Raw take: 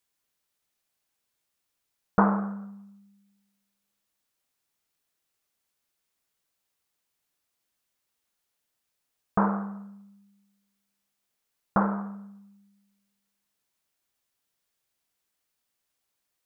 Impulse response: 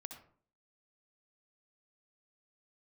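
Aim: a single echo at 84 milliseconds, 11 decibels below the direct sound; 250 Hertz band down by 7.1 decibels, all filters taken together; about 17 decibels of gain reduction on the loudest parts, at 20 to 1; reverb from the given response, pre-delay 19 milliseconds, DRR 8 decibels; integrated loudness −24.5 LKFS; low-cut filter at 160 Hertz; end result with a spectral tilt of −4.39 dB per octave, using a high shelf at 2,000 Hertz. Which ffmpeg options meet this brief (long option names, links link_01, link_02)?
-filter_complex "[0:a]highpass=160,equalizer=frequency=250:width_type=o:gain=-8,highshelf=frequency=2000:gain=-8.5,acompressor=threshold=-36dB:ratio=20,aecho=1:1:84:0.282,asplit=2[link_01][link_02];[1:a]atrim=start_sample=2205,adelay=19[link_03];[link_02][link_03]afir=irnorm=-1:irlink=0,volume=-3.5dB[link_04];[link_01][link_04]amix=inputs=2:normalize=0,volume=20dB"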